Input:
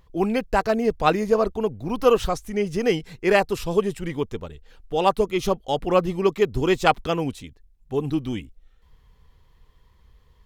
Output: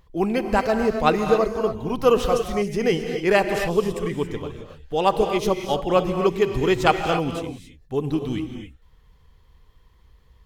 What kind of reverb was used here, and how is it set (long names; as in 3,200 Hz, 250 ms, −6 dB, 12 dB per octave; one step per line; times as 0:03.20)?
reverb whose tail is shaped and stops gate 300 ms rising, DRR 5.5 dB